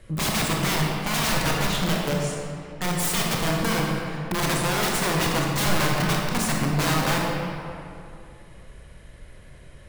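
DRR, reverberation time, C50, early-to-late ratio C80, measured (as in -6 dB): -2.0 dB, 2.5 s, -0.5 dB, 1.0 dB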